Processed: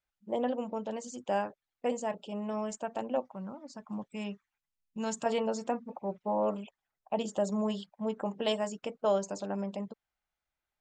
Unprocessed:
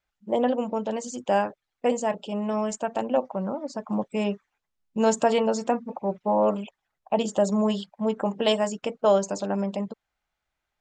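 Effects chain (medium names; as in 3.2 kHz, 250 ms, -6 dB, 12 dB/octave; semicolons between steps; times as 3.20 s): 3.22–5.26 s: peaking EQ 520 Hz -9 dB 1.7 oct; trim -8 dB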